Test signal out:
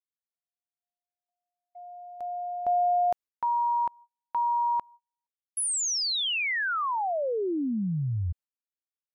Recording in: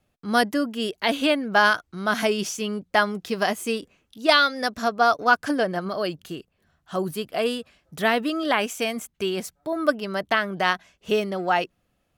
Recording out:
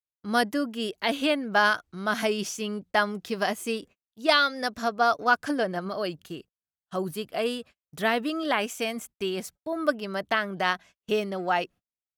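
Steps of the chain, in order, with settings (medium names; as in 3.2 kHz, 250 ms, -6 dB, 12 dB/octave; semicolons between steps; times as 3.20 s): gate -43 dBFS, range -37 dB; trim -3.5 dB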